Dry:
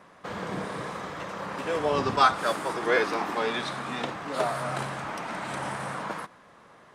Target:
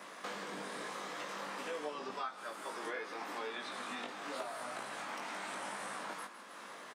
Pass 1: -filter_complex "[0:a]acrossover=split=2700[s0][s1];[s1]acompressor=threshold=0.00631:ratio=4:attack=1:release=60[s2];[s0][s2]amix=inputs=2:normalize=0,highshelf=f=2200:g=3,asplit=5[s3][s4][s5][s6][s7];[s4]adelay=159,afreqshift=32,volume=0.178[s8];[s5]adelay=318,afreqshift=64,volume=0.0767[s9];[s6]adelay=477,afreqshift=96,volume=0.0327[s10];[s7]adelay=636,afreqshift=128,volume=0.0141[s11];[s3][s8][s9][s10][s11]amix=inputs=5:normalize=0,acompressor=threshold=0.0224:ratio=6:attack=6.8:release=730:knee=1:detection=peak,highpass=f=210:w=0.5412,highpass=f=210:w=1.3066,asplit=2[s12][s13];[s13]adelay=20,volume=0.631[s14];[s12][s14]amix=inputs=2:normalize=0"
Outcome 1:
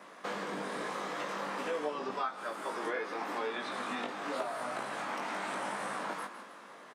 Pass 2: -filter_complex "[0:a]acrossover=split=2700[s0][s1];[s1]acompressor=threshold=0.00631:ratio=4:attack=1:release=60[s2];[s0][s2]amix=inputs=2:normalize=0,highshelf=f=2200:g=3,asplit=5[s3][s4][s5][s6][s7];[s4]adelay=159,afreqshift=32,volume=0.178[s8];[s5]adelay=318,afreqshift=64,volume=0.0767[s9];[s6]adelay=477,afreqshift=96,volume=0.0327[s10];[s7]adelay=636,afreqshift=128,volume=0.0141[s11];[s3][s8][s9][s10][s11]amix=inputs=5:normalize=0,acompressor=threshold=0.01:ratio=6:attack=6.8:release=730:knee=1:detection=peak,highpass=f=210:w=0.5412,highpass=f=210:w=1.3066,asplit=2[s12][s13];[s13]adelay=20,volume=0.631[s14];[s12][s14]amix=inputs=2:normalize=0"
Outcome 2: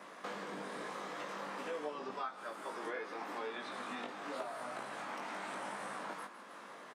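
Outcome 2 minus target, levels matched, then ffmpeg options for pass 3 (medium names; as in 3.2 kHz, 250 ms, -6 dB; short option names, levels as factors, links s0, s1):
4 kHz band -3.5 dB
-filter_complex "[0:a]acrossover=split=2700[s0][s1];[s1]acompressor=threshold=0.00631:ratio=4:attack=1:release=60[s2];[s0][s2]amix=inputs=2:normalize=0,highshelf=f=2200:g=10.5,asplit=5[s3][s4][s5][s6][s7];[s4]adelay=159,afreqshift=32,volume=0.178[s8];[s5]adelay=318,afreqshift=64,volume=0.0767[s9];[s6]adelay=477,afreqshift=96,volume=0.0327[s10];[s7]adelay=636,afreqshift=128,volume=0.0141[s11];[s3][s8][s9][s10][s11]amix=inputs=5:normalize=0,acompressor=threshold=0.01:ratio=6:attack=6.8:release=730:knee=1:detection=peak,highpass=f=210:w=0.5412,highpass=f=210:w=1.3066,asplit=2[s12][s13];[s13]adelay=20,volume=0.631[s14];[s12][s14]amix=inputs=2:normalize=0"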